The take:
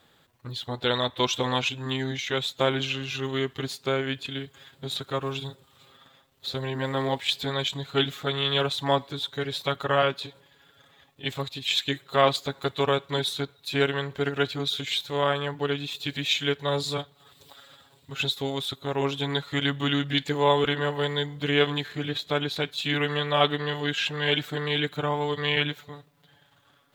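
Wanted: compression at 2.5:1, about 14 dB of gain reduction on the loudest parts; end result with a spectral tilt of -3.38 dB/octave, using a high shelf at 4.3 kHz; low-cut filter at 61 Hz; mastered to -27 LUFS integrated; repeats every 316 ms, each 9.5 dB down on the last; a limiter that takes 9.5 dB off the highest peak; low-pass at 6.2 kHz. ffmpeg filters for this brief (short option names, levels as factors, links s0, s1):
-af "highpass=61,lowpass=6200,highshelf=f=4300:g=-6,acompressor=threshold=0.0126:ratio=2.5,alimiter=level_in=1.78:limit=0.0631:level=0:latency=1,volume=0.562,aecho=1:1:316|632|948|1264:0.335|0.111|0.0365|0.012,volume=4.22"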